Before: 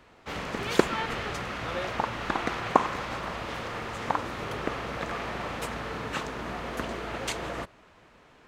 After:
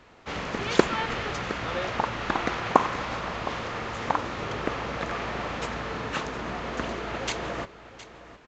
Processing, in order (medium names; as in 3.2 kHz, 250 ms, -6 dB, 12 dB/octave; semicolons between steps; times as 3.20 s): delay 714 ms -15.5 dB; trim +2 dB; A-law 128 kbps 16 kHz